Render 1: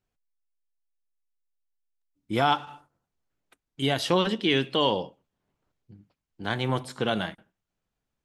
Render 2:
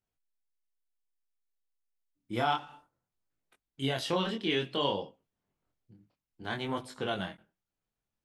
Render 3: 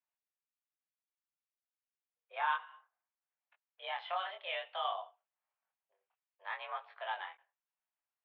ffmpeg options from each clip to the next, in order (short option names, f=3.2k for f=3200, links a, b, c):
-af "flanger=delay=19:depth=7.2:speed=0.58,volume=-3.5dB"
-af "highpass=f=500:t=q:w=0.5412,highpass=f=500:t=q:w=1.307,lowpass=f=2.8k:t=q:w=0.5176,lowpass=f=2.8k:t=q:w=0.7071,lowpass=f=2.8k:t=q:w=1.932,afreqshift=190,volume=-3.5dB"